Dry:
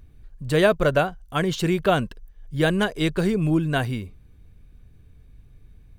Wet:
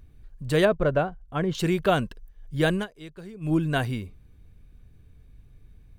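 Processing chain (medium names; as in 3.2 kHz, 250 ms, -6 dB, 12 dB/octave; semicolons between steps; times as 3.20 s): 0.65–1.55 s: low-pass 1.1 kHz 6 dB/octave; 2.74–3.53 s: dip -17.5 dB, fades 0.13 s; trim -2 dB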